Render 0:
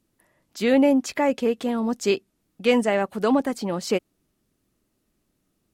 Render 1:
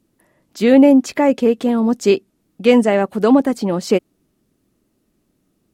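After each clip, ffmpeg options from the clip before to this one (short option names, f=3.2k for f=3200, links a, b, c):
-af "equalizer=f=270:t=o:w=2.6:g=6,volume=3dB"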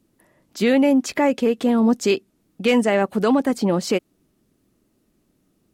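-filter_complex "[0:a]acrossover=split=1100[a][b];[a]alimiter=limit=-11dB:level=0:latency=1:release=204[c];[b]volume=15.5dB,asoftclip=hard,volume=-15.5dB[d];[c][d]amix=inputs=2:normalize=0"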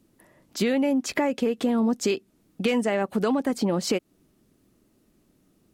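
-af "acompressor=threshold=-23dB:ratio=4,volume=1.5dB"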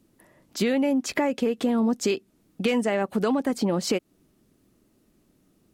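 -af anull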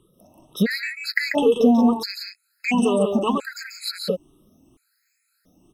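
-filter_complex "[0:a]afftfilt=real='re*pow(10,22/40*sin(2*PI*(0.65*log(max(b,1)*sr/1024/100)/log(2)-(2.1)*(pts-256)/sr)))':imag='im*pow(10,22/40*sin(2*PI*(0.65*log(max(b,1)*sr/1024/100)/log(2)-(2.1)*(pts-256)/sr)))':win_size=1024:overlap=0.75,asplit=2[a][b];[b]aecho=0:1:139.9|177.8:0.501|0.501[c];[a][c]amix=inputs=2:normalize=0,afftfilt=real='re*gt(sin(2*PI*0.73*pts/sr)*(1-2*mod(floor(b*sr/1024/1300),2)),0)':imag='im*gt(sin(2*PI*0.73*pts/sr)*(1-2*mod(floor(b*sr/1024/1300),2)),0)':win_size=1024:overlap=0.75"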